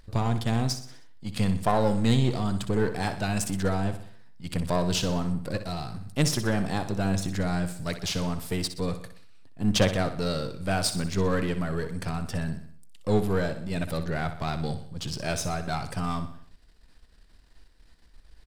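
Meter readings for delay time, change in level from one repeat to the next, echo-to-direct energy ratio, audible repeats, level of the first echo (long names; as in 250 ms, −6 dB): 62 ms, −6.0 dB, −9.5 dB, 4, −11.0 dB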